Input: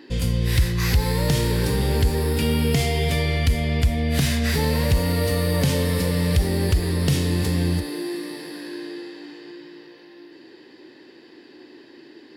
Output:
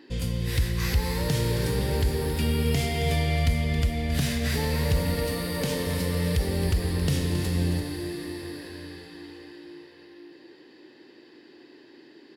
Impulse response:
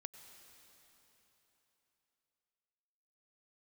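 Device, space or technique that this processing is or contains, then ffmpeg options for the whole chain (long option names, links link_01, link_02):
cave: -filter_complex "[0:a]asettb=1/sr,asplit=3[link_01][link_02][link_03];[link_01]atrim=end=5.144[link_04];[link_02]atrim=start=5.14:end=5.87,asetpts=PTS-STARTPTS,afade=type=in:duration=0.004:curve=qsin,afade=type=out:start_time=0.726:duration=0.004:curve=qsin,highpass=frequency=160:width=0.5412,highpass=frequency=160:width=1.3066[link_05];[link_03]atrim=start=5.866[link_06];[link_04][link_05]acrossfade=duration=0.004:curve1=hsin:curve2=qsin[link_07];[link_07][link_06]acrossfade=duration=0.004:curve1=qsin:curve2=hsin,aecho=1:1:271:0.282[link_08];[1:a]atrim=start_sample=2205[link_09];[link_08][link_09]afir=irnorm=-1:irlink=0"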